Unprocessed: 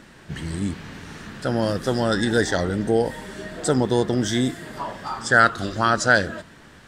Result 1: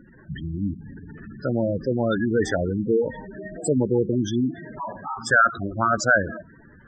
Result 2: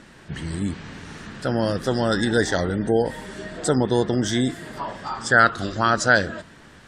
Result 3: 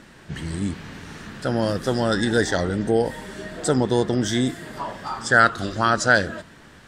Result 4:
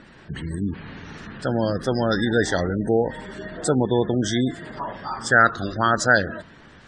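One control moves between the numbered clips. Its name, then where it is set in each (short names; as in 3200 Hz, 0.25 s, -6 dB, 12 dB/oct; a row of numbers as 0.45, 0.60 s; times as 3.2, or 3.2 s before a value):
spectral gate, under each frame's peak: -10, -40, -55, -25 dB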